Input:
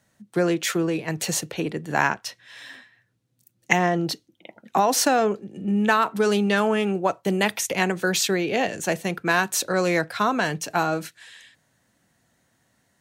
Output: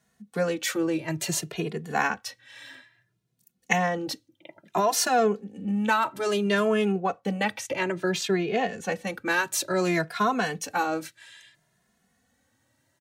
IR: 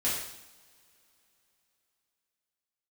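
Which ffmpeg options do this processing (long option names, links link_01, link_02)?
-filter_complex "[0:a]asettb=1/sr,asplit=3[link_01][link_02][link_03];[link_01]atrim=end=6.924[link_04];[link_02]atrim=start=6.92:end=9.07,asetpts=PTS-STARTPTS,afade=type=in:duration=0.004:curve=qsin,afade=type=out:start_time=2.146:duration=0.004:curve=qsin,aemphasis=mode=reproduction:type=50kf[link_05];[link_03]atrim=start=9.066[link_06];[link_04][link_05]acrossfade=duration=0.004:curve1=hsin:curve2=qsin[link_07];[link_07][link_06]acrossfade=duration=0.004:curve1=qsin:curve2=hsin,asplit=2[link_08][link_09];[link_09]adelay=2.4,afreqshift=0.59[link_10];[link_08][link_10]amix=inputs=2:normalize=1"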